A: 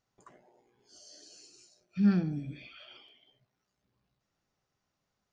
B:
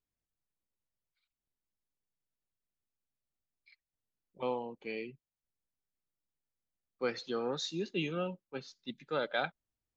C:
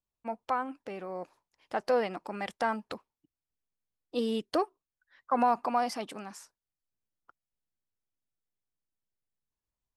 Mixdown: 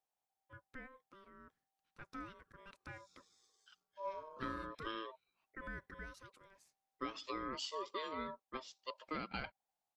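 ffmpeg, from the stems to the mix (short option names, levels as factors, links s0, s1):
-filter_complex "[0:a]highpass=160,adelay=2000,volume=0.178[s0];[1:a]acompressor=threshold=0.0141:ratio=6,volume=1.12,asplit=2[s1][s2];[2:a]adelay=250,volume=0.119[s3];[s2]apad=whole_len=322931[s4];[s0][s4]sidechaincompress=threshold=0.00631:ratio=8:attack=16:release=390[s5];[s5][s1][s3]amix=inputs=3:normalize=0,aeval=exprs='val(0)*sin(2*PI*780*n/s)':c=same"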